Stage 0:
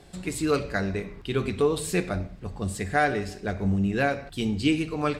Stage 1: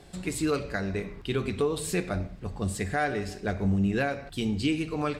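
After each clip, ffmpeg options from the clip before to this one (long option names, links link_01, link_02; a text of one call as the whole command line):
ffmpeg -i in.wav -af "alimiter=limit=-17.5dB:level=0:latency=1:release=287" out.wav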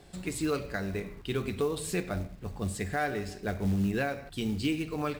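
ffmpeg -i in.wav -af "acrusher=bits=6:mode=log:mix=0:aa=0.000001,volume=-3dB" out.wav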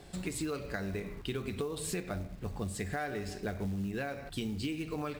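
ffmpeg -i in.wav -af "acompressor=threshold=-35dB:ratio=6,volume=2dB" out.wav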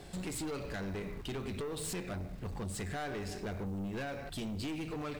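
ffmpeg -i in.wav -af "aeval=exprs='(tanh(79.4*val(0)+0.25)-tanh(0.25))/79.4':channel_layout=same,volume=3dB" out.wav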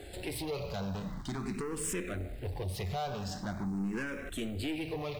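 ffmpeg -i in.wav -filter_complex "[0:a]asplit=2[link_01][link_02];[link_02]afreqshift=0.44[link_03];[link_01][link_03]amix=inputs=2:normalize=1,volume=5.5dB" out.wav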